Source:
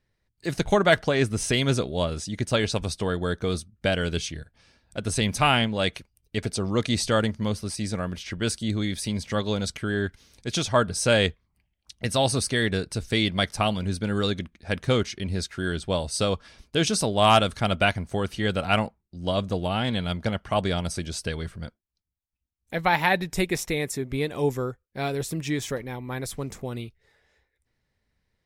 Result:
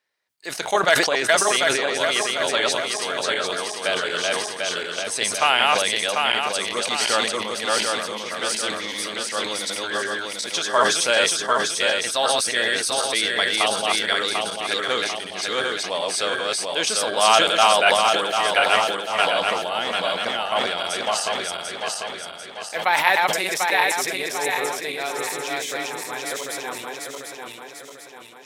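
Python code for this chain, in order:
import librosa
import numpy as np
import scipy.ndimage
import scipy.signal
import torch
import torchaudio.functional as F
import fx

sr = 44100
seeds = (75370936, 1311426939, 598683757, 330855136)

y = fx.reverse_delay_fb(x, sr, ms=372, feedback_pct=69, wet_db=-0.5)
y = scipy.signal.sosfilt(scipy.signal.butter(2, 660.0, 'highpass', fs=sr, output='sos'), y)
y = fx.sustainer(y, sr, db_per_s=49.0)
y = F.gain(torch.from_numpy(y), 3.0).numpy()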